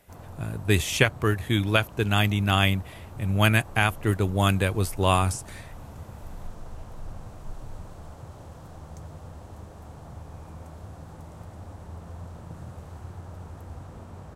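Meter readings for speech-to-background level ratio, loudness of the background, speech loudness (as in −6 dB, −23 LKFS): 19.5 dB, −43.5 LKFS, −24.0 LKFS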